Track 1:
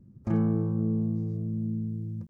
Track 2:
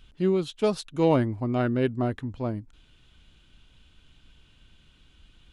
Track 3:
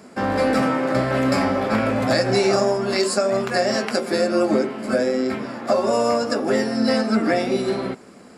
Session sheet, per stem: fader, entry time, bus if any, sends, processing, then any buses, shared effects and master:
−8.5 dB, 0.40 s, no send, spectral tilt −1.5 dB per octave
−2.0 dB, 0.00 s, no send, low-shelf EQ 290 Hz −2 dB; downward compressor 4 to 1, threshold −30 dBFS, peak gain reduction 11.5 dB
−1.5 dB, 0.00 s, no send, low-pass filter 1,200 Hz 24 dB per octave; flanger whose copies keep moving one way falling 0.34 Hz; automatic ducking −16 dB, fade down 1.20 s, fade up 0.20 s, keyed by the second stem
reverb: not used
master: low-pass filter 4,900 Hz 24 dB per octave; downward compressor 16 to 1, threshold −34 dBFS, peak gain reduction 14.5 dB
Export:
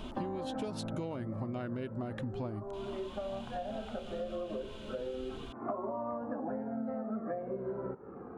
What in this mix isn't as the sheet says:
stem 2 −2.0 dB → +9.0 dB
stem 3 −1.5 dB → +5.5 dB
master: missing low-pass filter 4,900 Hz 24 dB per octave

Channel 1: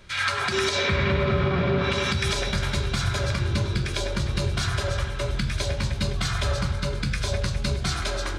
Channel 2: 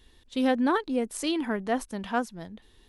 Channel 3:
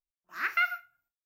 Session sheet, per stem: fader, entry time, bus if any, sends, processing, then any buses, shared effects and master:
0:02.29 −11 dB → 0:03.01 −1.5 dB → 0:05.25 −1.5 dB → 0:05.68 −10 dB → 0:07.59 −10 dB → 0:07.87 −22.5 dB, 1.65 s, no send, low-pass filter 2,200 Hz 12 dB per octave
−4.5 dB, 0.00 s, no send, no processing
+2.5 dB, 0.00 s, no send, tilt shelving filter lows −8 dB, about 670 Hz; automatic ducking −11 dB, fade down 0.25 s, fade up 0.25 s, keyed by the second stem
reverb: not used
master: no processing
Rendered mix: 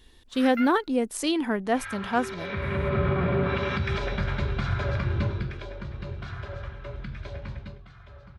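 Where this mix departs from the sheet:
stem 2 −4.5 dB → +2.5 dB
stem 3: missing tilt shelving filter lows −8 dB, about 670 Hz

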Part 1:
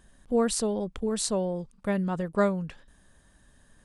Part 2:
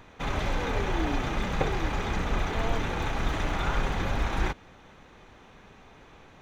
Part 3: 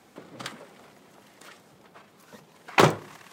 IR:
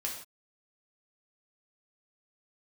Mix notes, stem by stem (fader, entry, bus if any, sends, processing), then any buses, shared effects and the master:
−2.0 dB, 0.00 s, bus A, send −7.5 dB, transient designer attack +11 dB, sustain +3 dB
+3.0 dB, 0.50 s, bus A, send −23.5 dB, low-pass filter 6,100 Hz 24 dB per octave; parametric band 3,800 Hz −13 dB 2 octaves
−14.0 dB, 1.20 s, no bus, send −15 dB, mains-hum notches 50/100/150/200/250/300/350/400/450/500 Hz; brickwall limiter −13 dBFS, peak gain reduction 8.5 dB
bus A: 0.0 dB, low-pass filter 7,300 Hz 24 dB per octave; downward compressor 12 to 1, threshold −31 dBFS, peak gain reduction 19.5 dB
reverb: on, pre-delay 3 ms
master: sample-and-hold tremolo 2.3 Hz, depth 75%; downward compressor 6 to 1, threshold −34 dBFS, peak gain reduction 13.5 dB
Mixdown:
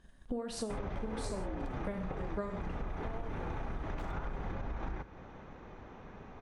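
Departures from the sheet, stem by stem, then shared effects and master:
stem 1 −2.0 dB → −8.5 dB
stem 3 −14.0 dB → −25.0 dB
master: missing sample-and-hold tremolo 2.3 Hz, depth 75%

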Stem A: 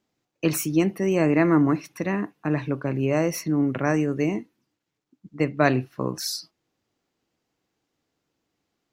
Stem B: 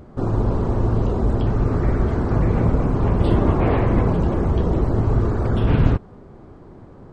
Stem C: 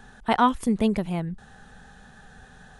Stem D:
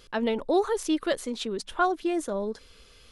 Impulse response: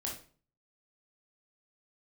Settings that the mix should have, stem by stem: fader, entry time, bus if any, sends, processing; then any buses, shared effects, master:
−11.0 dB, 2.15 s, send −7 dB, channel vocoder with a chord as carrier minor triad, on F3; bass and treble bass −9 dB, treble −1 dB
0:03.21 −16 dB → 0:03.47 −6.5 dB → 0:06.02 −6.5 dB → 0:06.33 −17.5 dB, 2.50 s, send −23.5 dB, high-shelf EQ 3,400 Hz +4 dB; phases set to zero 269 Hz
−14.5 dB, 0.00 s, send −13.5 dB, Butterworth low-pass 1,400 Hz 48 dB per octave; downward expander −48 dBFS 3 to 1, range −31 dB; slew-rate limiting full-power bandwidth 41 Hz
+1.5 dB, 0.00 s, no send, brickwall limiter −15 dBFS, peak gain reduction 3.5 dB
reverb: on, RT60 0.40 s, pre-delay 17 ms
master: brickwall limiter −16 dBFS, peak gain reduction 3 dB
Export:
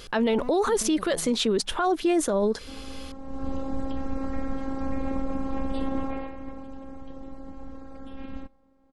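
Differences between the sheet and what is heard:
stem A: muted
stem D +1.5 dB → +10.5 dB

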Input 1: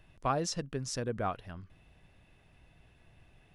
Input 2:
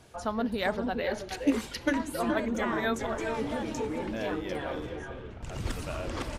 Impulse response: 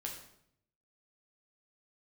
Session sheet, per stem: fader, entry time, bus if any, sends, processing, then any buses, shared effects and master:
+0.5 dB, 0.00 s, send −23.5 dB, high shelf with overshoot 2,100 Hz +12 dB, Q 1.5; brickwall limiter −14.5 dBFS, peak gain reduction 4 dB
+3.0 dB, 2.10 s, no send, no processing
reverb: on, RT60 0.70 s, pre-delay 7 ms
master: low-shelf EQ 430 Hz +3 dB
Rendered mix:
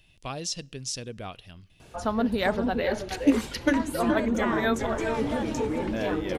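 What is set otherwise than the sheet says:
stem 1 +0.5 dB → −5.5 dB
stem 2: entry 2.10 s → 1.80 s

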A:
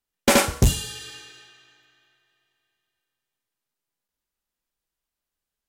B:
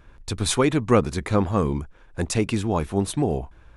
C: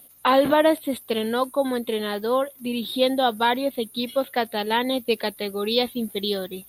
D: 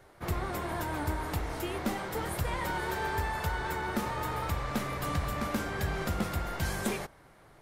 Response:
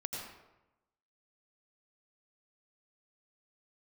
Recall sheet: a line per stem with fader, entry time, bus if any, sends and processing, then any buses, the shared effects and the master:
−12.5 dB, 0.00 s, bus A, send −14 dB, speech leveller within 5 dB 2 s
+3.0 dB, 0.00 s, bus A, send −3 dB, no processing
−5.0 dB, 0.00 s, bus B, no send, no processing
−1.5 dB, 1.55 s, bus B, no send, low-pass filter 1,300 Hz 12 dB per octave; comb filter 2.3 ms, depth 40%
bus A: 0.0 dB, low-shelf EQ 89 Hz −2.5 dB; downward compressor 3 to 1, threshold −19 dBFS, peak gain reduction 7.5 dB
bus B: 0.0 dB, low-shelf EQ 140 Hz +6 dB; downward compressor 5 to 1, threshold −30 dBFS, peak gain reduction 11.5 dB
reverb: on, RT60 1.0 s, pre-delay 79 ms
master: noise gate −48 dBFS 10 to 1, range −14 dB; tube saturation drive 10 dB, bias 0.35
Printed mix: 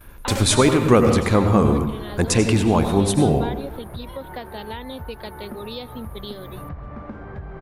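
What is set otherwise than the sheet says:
stem D: missing comb filter 2.3 ms, depth 40%
master: missing tube saturation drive 10 dB, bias 0.35

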